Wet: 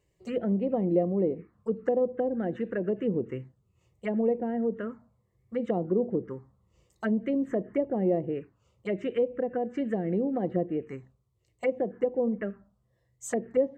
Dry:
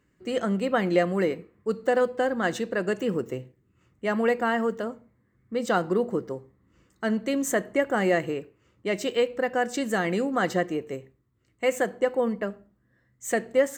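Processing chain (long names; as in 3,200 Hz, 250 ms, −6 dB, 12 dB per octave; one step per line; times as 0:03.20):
treble cut that deepens with the level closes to 630 Hz, closed at −21.5 dBFS
phaser swept by the level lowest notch 240 Hz, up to 1,500 Hz, full sweep at −22.5 dBFS
tape wow and flutter 25 cents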